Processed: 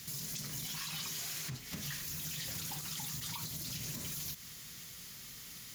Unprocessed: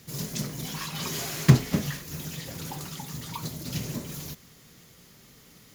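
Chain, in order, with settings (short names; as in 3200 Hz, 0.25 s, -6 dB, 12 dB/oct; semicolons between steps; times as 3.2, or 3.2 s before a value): passive tone stack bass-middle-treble 5-5-5; compressor 16:1, threshold -48 dBFS, peak gain reduction 23 dB; limiter -44 dBFS, peak gain reduction 9.5 dB; gain +13.5 dB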